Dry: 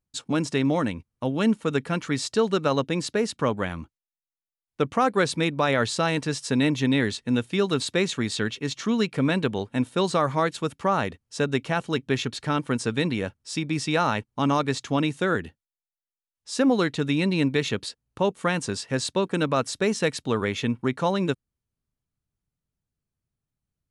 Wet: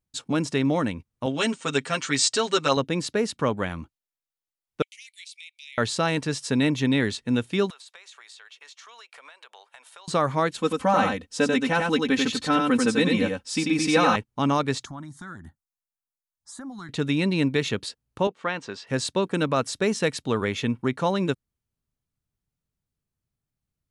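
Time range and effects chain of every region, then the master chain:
0:01.26–0:02.77: linear-phase brick-wall low-pass 9,100 Hz + spectral tilt +3 dB per octave + comb filter 7.5 ms, depth 86%
0:04.82–0:05.78: Butterworth high-pass 2,100 Hz 96 dB per octave + downward compressor 4 to 1, threshold −42 dBFS
0:07.70–0:10.08: inverse Chebyshev high-pass filter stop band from 160 Hz, stop band 70 dB + downward compressor 20 to 1, threshold −43 dBFS
0:10.58–0:14.16: comb filter 3.9 ms, depth 93% + single-tap delay 91 ms −3.5 dB
0:14.85–0:16.89: downward compressor 3 to 1, threshold −33 dBFS + auto-filter notch sine 1.9 Hz 490–5,500 Hz + phaser with its sweep stopped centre 1,100 Hz, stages 4
0:18.27–0:18.87: high-pass filter 560 Hz 6 dB per octave + high-frequency loss of the air 170 metres
whole clip: no processing

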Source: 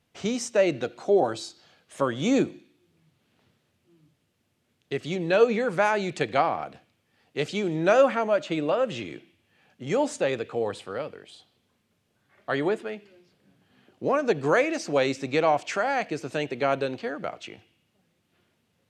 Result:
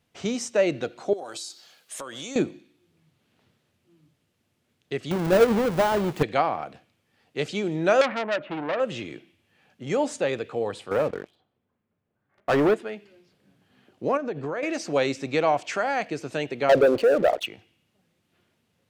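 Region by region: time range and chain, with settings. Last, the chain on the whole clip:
0:01.13–0:02.36: RIAA equalisation recording + downward compressor 10 to 1, threshold −32 dBFS
0:05.11–0:06.23: each half-wave held at its own peak + de-essing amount 70%
0:08.01–0:08.80: low-pass filter 2,400 Hz 24 dB per octave + saturating transformer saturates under 2,900 Hz
0:10.91–0:12.74: low-pass filter 1,600 Hz + leveller curve on the samples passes 3
0:14.17–0:14.63: low-pass filter 1,800 Hz 6 dB per octave + downward compressor 4 to 1, threshold −27 dBFS
0:16.69–0:17.46: spectral envelope exaggerated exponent 2 + parametric band 570 Hz +6 dB 0.72 octaves + leveller curve on the samples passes 3
whole clip: no processing

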